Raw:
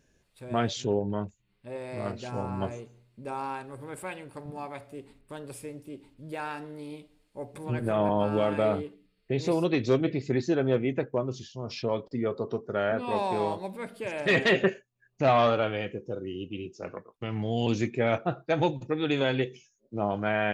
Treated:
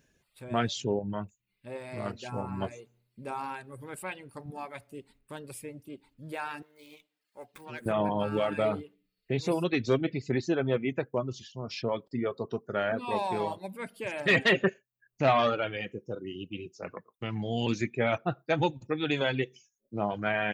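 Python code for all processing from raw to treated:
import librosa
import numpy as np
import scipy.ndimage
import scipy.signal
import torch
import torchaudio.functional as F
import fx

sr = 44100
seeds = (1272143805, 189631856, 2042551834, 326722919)

y = fx.chain(x, sr, fx.highpass(hz=950.0, slope=6),
    fx.running_max(window=3), at=(6.62, 7.86))
y = fx.riaa(y, sr, side='recording')
y = fx.dereverb_blind(y, sr, rt60_s=0.79)
y = fx.bass_treble(y, sr, bass_db=12, treble_db=-12)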